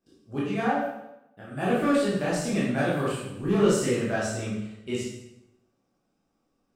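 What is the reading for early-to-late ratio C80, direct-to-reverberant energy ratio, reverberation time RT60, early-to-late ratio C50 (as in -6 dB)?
4.0 dB, -8.0 dB, 0.90 s, 0.5 dB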